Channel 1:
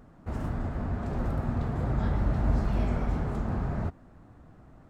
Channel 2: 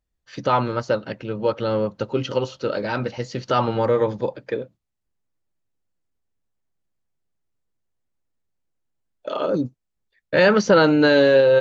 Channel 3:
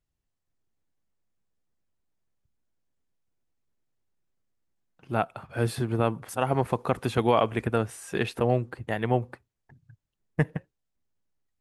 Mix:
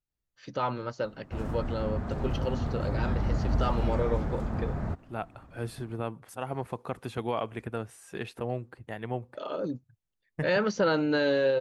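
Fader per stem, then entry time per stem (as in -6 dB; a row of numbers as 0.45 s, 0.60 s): -1.5 dB, -10.5 dB, -9.0 dB; 1.05 s, 0.10 s, 0.00 s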